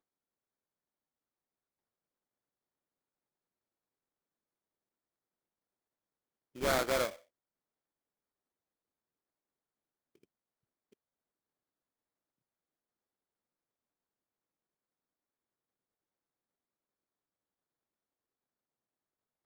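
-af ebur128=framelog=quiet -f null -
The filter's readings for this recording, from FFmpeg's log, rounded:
Integrated loudness:
  I:         -32.6 LUFS
  Threshold: -43.6 LUFS
Loudness range:
  LRA:         4.1 LU
  Threshold: -59.1 LUFS
  LRA low:   -42.4 LUFS
  LRA high:  -38.3 LUFS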